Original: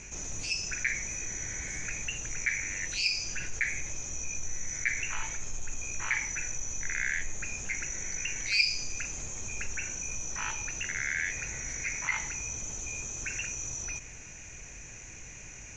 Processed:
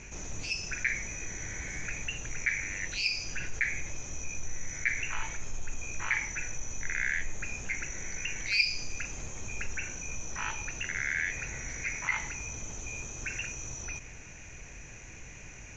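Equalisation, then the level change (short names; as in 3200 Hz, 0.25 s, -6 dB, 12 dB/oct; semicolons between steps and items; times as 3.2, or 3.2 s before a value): air absorption 100 m; +1.5 dB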